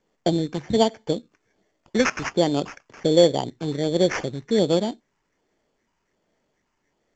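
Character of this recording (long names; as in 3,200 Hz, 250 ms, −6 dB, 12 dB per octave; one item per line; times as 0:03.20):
phaser sweep stages 8, 1.3 Hz, lowest notch 540–4,100 Hz
aliases and images of a low sample rate 3,900 Hz, jitter 0%
mu-law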